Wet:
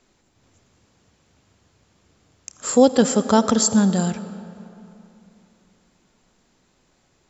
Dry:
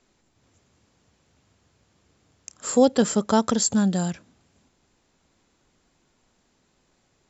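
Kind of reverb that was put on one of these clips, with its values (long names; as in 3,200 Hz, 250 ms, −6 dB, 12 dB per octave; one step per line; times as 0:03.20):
comb and all-pass reverb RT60 3 s, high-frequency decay 0.65×, pre-delay 35 ms, DRR 12.5 dB
level +3.5 dB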